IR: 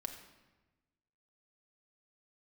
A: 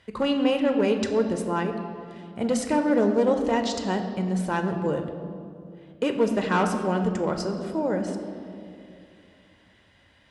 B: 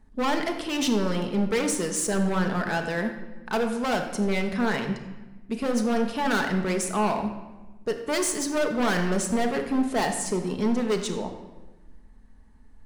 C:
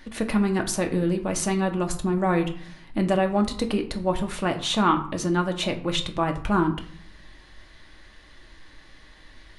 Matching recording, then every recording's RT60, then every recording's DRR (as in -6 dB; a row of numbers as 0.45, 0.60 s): B; 2.6, 1.2, 0.55 s; 5.0, 4.5, 4.0 dB